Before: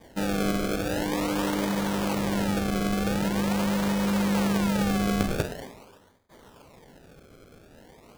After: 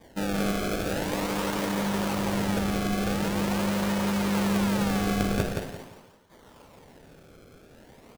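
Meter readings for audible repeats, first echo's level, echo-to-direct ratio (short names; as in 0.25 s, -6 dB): 3, -4.0 dB, -3.5 dB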